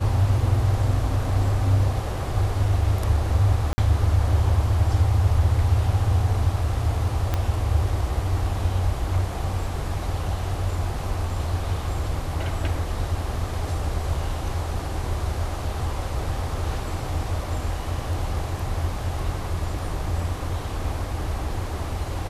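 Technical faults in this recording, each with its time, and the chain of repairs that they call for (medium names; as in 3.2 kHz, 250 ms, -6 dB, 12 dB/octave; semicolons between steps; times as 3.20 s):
3.73–3.78 s: dropout 50 ms
7.34 s: pop -10 dBFS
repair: de-click; interpolate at 3.73 s, 50 ms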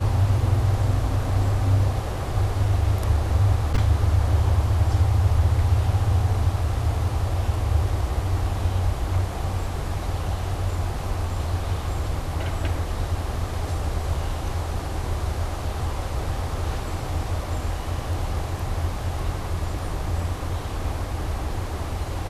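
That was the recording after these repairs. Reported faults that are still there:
7.34 s: pop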